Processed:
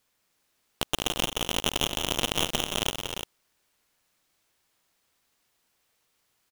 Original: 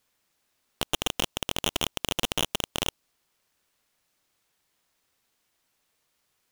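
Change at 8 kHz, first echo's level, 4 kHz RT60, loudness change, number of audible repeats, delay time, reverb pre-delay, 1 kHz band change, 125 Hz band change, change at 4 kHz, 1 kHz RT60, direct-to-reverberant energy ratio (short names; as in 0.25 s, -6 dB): +1.5 dB, -8.0 dB, none, +1.0 dB, 4, 0.172 s, none, +1.5 dB, +1.5 dB, +1.5 dB, none, none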